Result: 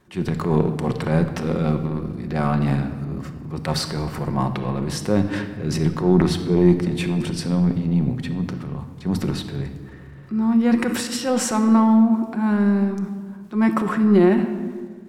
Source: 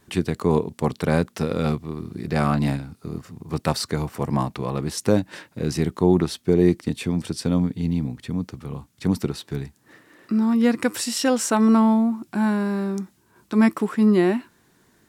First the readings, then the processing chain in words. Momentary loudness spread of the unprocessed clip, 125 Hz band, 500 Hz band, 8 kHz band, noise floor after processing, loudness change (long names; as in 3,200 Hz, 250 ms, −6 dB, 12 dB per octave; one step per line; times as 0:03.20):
13 LU, +3.0 dB, +0.5 dB, −0.5 dB, −39 dBFS, +1.5 dB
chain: high-shelf EQ 3,500 Hz −11 dB
transient designer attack −6 dB, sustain +9 dB
rectangular room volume 2,100 cubic metres, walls mixed, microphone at 0.97 metres